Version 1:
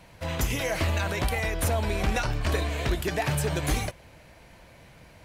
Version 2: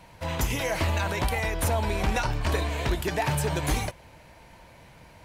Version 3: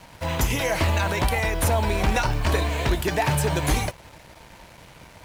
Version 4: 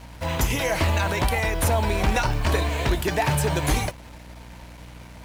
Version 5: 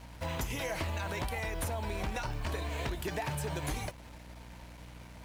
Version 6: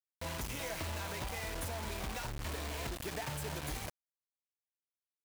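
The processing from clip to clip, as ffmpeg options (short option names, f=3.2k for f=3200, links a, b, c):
-af "equalizer=f=920:w=6.3:g=7.5"
-af "acrusher=bits=7:mix=0:aa=0.5,volume=4dB"
-af "aeval=exprs='val(0)+0.00794*(sin(2*PI*60*n/s)+sin(2*PI*2*60*n/s)/2+sin(2*PI*3*60*n/s)/3+sin(2*PI*4*60*n/s)/4+sin(2*PI*5*60*n/s)/5)':c=same"
-af "acompressor=threshold=-25dB:ratio=6,volume=-7dB"
-af "acrusher=bits=5:mix=0:aa=0.000001,volume=-5.5dB"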